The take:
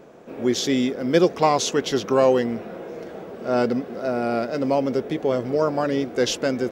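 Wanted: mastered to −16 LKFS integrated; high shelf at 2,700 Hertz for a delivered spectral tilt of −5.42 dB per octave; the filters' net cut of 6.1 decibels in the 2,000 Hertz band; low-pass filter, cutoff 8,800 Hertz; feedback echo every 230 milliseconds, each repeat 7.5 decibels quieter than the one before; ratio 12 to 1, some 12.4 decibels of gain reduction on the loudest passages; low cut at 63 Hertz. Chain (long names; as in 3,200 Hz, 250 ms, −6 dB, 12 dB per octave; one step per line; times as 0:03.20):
high-pass filter 63 Hz
low-pass filter 8,800 Hz
parametric band 2,000 Hz −6.5 dB
high-shelf EQ 2,700 Hz −4.5 dB
downward compressor 12 to 1, threshold −25 dBFS
repeating echo 230 ms, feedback 42%, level −7.5 dB
level +14 dB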